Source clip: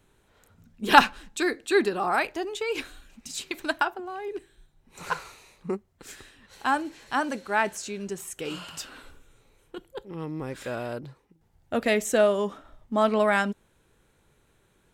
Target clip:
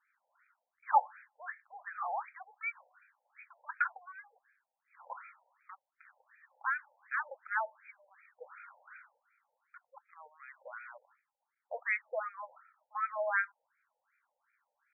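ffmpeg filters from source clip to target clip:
-af "atempo=1,tiltshelf=f=1.5k:g=-9.5,afftfilt=real='re*between(b*sr/1024,660*pow(1800/660,0.5+0.5*sin(2*PI*2.7*pts/sr))/1.41,660*pow(1800/660,0.5+0.5*sin(2*PI*2.7*pts/sr))*1.41)':imag='im*between(b*sr/1024,660*pow(1800/660,0.5+0.5*sin(2*PI*2.7*pts/sr))/1.41,660*pow(1800/660,0.5+0.5*sin(2*PI*2.7*pts/sr))*1.41)':win_size=1024:overlap=0.75,volume=-3.5dB"

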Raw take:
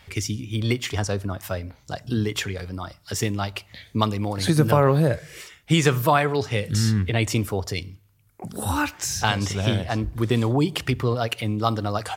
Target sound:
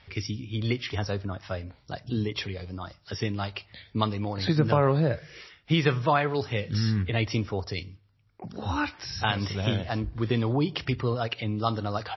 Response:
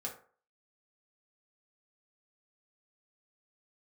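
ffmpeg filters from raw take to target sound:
-filter_complex "[0:a]asplit=3[a][b][c];[a]afade=t=out:st=2.06:d=0.02[d];[b]equalizer=f=1.5k:w=3.4:g=-9.5,afade=t=in:st=2.06:d=0.02,afade=t=out:st=2.73:d=0.02[e];[c]afade=t=in:st=2.73:d=0.02[f];[d][e][f]amix=inputs=3:normalize=0,volume=-4dB" -ar 16000 -c:a libmp3lame -b:a 24k

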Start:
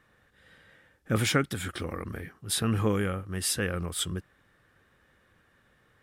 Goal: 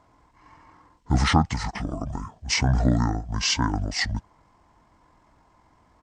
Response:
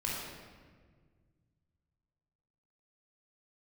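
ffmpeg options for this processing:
-af "asetrate=25476,aresample=44100,atempo=1.73107,volume=6dB"

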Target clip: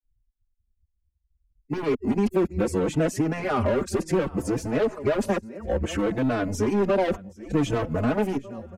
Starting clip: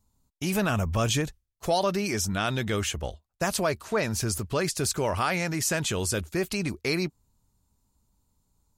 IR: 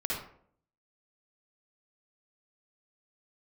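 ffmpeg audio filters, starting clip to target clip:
-filter_complex "[0:a]areverse,afftfilt=real='re*gte(hypot(re,im),0.00398)':imag='im*gte(hypot(re,im),0.00398)':win_size=1024:overlap=0.75,acrossover=split=190|540|4400[a][b][c][d];[b]acrusher=samples=19:mix=1:aa=0.000001[e];[a][e][c][d]amix=inputs=4:normalize=0,equalizer=f=125:t=o:w=1:g=-4,equalizer=f=250:t=o:w=1:g=11,equalizer=f=500:t=o:w=1:g=8,equalizer=f=4k:t=o:w=1:g=-9,aecho=1:1:774|1548|2322:0.0631|0.0297|0.0139,asoftclip=type=tanh:threshold=-12.5dB,aemphasis=mode=reproduction:type=75kf,aeval=exprs='0.224*(cos(1*acos(clip(val(0)/0.224,-1,1)))-cos(1*PI/2))+0.0355*(cos(5*acos(clip(val(0)/0.224,-1,1)))-cos(5*PI/2))':c=same,acrossover=split=140[f][g];[g]acompressor=threshold=-24dB:ratio=2[h];[f][h]amix=inputs=2:normalize=0,asplit=2[i][j];[j]adelay=4.2,afreqshift=-0.63[k];[i][k]amix=inputs=2:normalize=1,volume=3.5dB"

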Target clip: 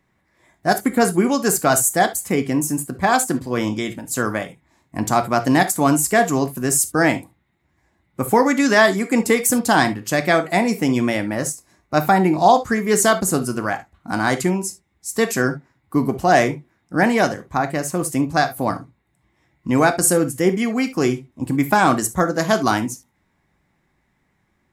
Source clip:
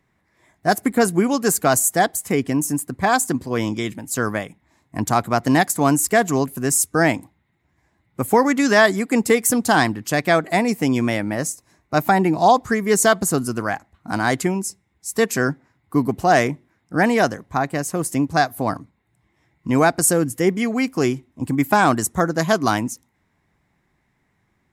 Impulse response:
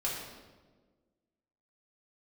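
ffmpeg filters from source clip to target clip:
-filter_complex "[0:a]asplit=2[a][b];[1:a]atrim=start_sample=2205,atrim=end_sample=3528[c];[b][c]afir=irnorm=-1:irlink=0,volume=-7dB[d];[a][d]amix=inputs=2:normalize=0,volume=-2.5dB"

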